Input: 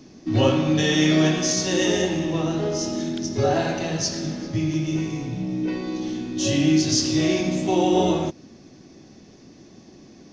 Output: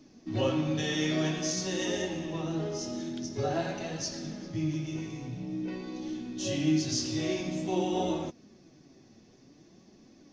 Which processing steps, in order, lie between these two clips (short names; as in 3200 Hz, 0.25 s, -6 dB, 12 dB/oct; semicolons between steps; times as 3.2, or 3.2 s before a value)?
flange 0.49 Hz, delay 3.2 ms, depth 5.7 ms, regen +59%; gain -5.5 dB